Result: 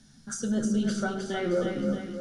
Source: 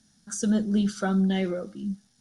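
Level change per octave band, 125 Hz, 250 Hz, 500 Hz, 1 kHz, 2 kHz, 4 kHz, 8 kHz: −5.5, −3.5, +2.5, −0.5, +1.5, −1.0, −1.5 decibels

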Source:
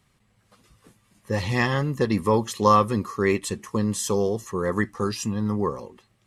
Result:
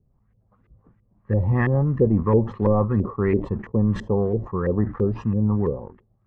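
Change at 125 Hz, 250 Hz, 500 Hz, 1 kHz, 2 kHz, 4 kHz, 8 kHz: +7.0 dB, +3.0 dB, +1.5 dB, −7.5 dB, −5.5 dB, below −15 dB, below −25 dB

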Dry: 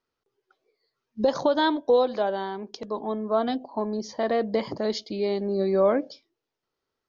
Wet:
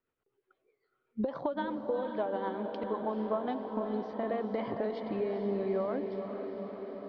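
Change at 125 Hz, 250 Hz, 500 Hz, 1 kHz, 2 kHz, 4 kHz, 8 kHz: −5.5 dB, −6.5 dB, −8.5 dB, −8.0 dB, −10.0 dB, −18.0 dB, can't be measured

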